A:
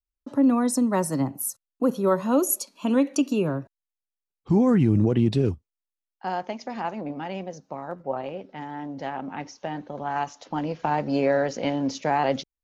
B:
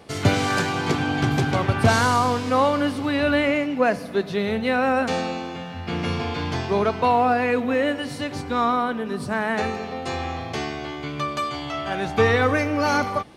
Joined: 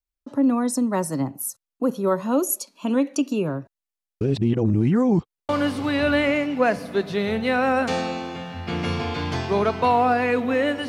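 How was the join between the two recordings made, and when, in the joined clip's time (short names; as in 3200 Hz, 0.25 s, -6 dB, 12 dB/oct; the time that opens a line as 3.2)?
A
4.21–5.49 reverse
5.49 switch to B from 2.69 s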